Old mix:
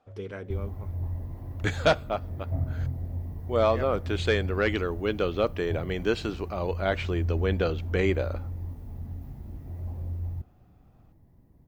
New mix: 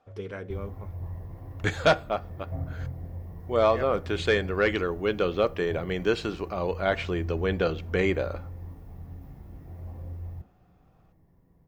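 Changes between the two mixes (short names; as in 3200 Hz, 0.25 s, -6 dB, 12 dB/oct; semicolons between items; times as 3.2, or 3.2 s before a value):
background -5.0 dB; reverb: on, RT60 0.30 s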